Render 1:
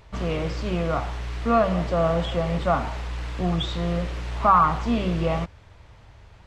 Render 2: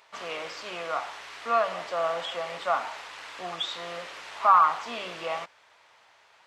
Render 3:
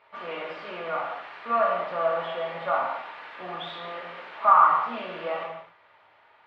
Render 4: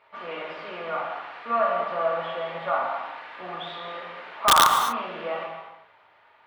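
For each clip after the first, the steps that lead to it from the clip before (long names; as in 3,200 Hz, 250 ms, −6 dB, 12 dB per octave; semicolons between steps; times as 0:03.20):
high-pass filter 810 Hz 12 dB per octave
high-frequency loss of the air 460 metres; reverb whose tail is shaped and stops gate 300 ms falling, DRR −2.5 dB
wrap-around overflow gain 9 dB; reverb whose tail is shaped and stops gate 270 ms rising, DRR 9 dB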